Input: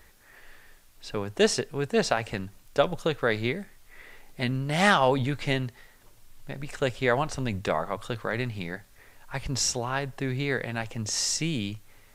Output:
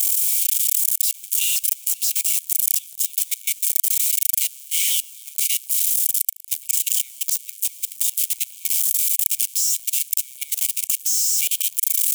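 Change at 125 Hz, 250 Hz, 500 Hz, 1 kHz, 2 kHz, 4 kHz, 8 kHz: under -40 dB, under -40 dB, under -40 dB, under -40 dB, -6.5 dB, +5.5 dB, +16.5 dB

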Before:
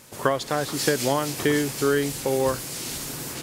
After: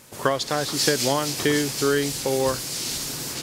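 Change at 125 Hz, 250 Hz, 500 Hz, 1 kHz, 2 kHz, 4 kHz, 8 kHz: 0.0, 0.0, 0.0, +0.5, +1.0, +5.5, +3.5 dB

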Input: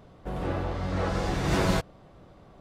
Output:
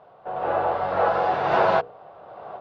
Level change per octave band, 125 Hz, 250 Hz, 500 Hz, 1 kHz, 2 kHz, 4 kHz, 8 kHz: -10.5 dB, -6.0 dB, +9.0 dB, +12.5 dB, +5.5 dB, -2.5 dB, under -15 dB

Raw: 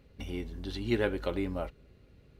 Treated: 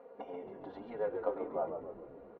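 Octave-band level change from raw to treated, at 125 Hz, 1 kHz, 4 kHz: -19.5 dB, +2.0 dB, under -20 dB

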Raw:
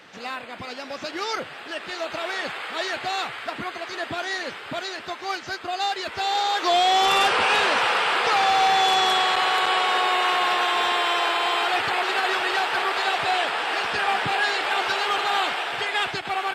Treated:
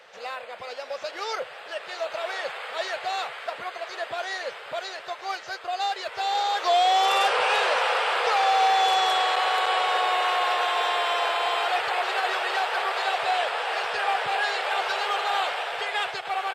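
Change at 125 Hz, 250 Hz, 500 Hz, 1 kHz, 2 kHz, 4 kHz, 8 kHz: n/a, under -10 dB, -0.5 dB, -1.5 dB, -3.5 dB, -4.0 dB, -4.0 dB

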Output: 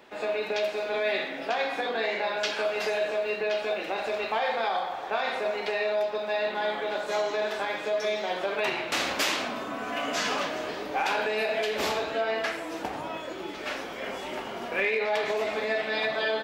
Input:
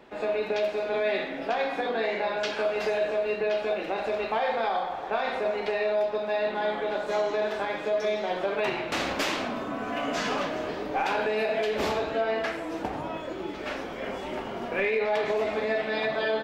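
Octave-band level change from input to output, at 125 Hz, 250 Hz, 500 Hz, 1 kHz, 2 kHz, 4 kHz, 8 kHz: -5.5, -3.5, -1.5, -0.5, +2.0, +3.5, +5.5 dB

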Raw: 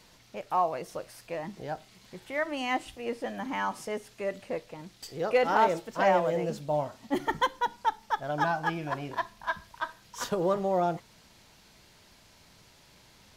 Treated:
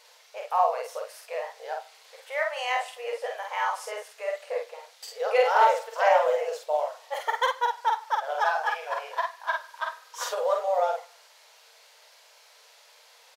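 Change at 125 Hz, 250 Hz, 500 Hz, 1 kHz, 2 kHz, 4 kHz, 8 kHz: under -40 dB, under -30 dB, +3.0 dB, +4.0 dB, +3.5 dB, +3.5 dB, +3.5 dB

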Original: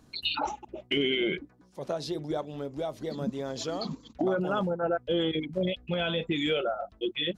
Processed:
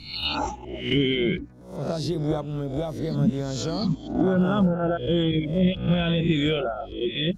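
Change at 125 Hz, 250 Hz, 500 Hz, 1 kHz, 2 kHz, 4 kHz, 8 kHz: +13.0, +8.5, +3.0, +2.5, +2.0, +2.5, +5.0 dB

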